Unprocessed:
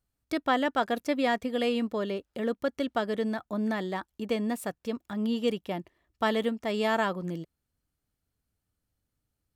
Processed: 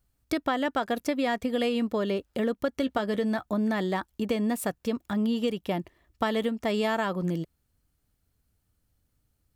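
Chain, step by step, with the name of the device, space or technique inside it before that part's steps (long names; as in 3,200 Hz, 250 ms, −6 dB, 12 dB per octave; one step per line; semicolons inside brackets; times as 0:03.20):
ASMR close-microphone chain (low-shelf EQ 110 Hz +6 dB; downward compressor, threshold −29 dBFS, peak gain reduction 9 dB; high-shelf EQ 11,000 Hz +4 dB)
0:02.80–0:03.50: double-tracking delay 15 ms −12 dB
level +5.5 dB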